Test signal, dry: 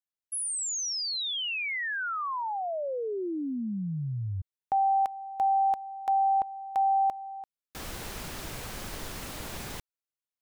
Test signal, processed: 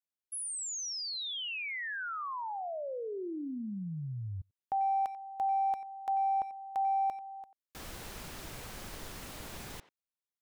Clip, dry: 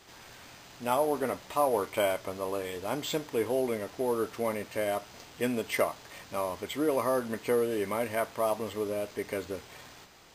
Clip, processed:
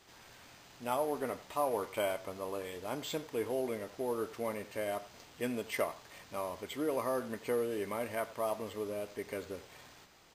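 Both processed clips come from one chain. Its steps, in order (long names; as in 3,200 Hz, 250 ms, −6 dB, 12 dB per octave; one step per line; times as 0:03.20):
far-end echo of a speakerphone 90 ms, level −15 dB
level −6 dB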